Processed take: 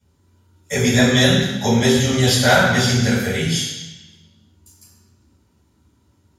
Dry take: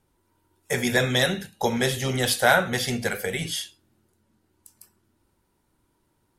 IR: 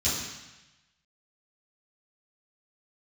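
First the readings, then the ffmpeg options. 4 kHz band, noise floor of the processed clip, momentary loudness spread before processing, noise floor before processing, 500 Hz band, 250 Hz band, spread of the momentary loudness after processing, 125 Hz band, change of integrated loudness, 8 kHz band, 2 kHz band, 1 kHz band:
+8.0 dB, -61 dBFS, 10 LU, -71 dBFS, +6.0 dB, +11.5 dB, 11 LU, +11.5 dB, +7.5 dB, +8.0 dB, +5.0 dB, +4.5 dB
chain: -filter_complex "[1:a]atrim=start_sample=2205[a];[0:a][a]afir=irnorm=-1:irlink=0,volume=-4.5dB"

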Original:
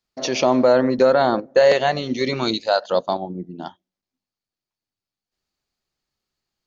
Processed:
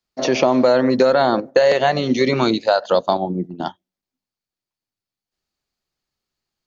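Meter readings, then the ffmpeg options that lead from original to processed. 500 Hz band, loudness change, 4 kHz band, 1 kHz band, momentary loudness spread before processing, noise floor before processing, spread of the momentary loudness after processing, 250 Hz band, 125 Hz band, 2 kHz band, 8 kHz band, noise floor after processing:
+1.5 dB, +1.5 dB, +1.0 dB, +2.0 dB, 16 LU, under -85 dBFS, 10 LU, +3.5 dB, +4.0 dB, +2.0 dB, n/a, under -85 dBFS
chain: -filter_complex "[0:a]agate=range=-8dB:threshold=-33dB:ratio=16:detection=peak,acrossover=split=90|2300[a][b][c];[a]acompressor=threshold=-58dB:ratio=4[d];[b]acompressor=threshold=-20dB:ratio=4[e];[c]acompressor=threshold=-37dB:ratio=4[f];[d][e][f]amix=inputs=3:normalize=0,volume=7.5dB"

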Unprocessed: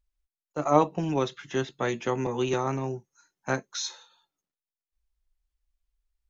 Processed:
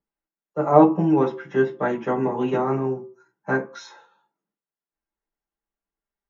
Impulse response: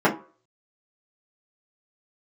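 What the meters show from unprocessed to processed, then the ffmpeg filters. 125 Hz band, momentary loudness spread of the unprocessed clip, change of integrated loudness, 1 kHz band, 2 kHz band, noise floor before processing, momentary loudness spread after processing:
+4.0 dB, 12 LU, +7.0 dB, +5.5 dB, +5.0 dB, under -85 dBFS, 16 LU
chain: -filter_complex "[1:a]atrim=start_sample=2205,afade=t=out:st=0.4:d=0.01,atrim=end_sample=18081[a];[0:a][a]afir=irnorm=-1:irlink=0,volume=-16dB"

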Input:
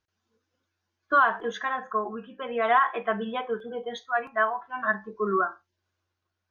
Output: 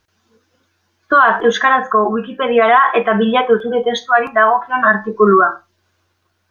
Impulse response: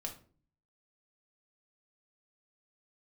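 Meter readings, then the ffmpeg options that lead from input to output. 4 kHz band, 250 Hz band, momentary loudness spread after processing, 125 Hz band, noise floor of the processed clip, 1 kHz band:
+16.5 dB, +17.0 dB, 6 LU, n/a, -66 dBFS, +13.0 dB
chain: -filter_complex "[0:a]asplit=2[a][b];[1:a]atrim=start_sample=2205,atrim=end_sample=6615[c];[b][c]afir=irnorm=-1:irlink=0,volume=-15dB[d];[a][d]amix=inputs=2:normalize=0,alimiter=level_in=17.5dB:limit=-1dB:release=50:level=0:latency=1,volume=-1dB"

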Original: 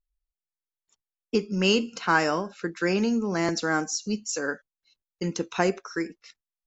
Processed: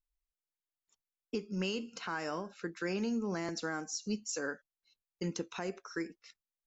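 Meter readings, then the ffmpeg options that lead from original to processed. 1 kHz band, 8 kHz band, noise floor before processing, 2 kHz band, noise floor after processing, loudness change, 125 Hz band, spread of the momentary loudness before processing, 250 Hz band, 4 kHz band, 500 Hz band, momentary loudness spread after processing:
-14.0 dB, n/a, under -85 dBFS, -12.5 dB, under -85 dBFS, -11.5 dB, -10.0 dB, 10 LU, -10.0 dB, -12.0 dB, -11.5 dB, 7 LU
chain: -af "alimiter=limit=-19dB:level=0:latency=1:release=342,volume=-6.5dB"

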